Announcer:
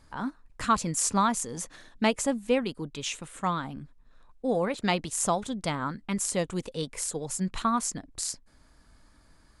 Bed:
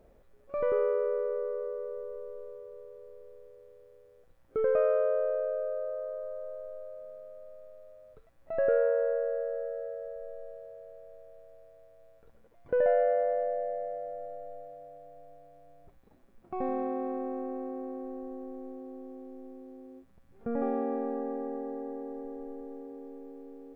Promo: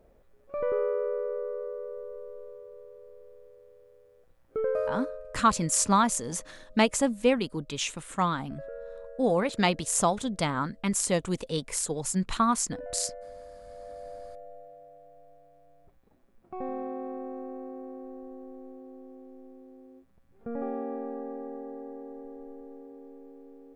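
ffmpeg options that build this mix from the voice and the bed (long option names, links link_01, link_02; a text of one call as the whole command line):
ffmpeg -i stem1.wav -i stem2.wav -filter_complex "[0:a]adelay=4750,volume=2dB[link_01];[1:a]volume=12.5dB,afade=type=out:start_time=4.57:duration=0.66:silence=0.16788,afade=type=in:start_time=13.64:duration=0.49:silence=0.223872[link_02];[link_01][link_02]amix=inputs=2:normalize=0" out.wav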